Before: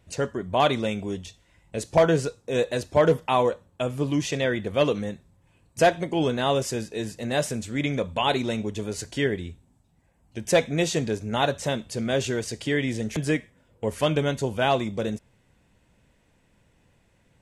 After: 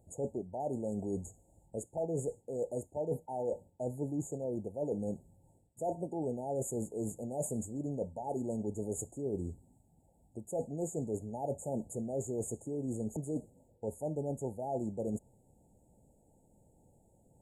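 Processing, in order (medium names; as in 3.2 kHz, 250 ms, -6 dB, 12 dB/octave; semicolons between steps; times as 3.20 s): bass shelf 160 Hz -4.5 dB; reverse; compression 12:1, threshold -32 dBFS, peak gain reduction 18.5 dB; reverse; brick-wall FIR band-stop 920–6600 Hz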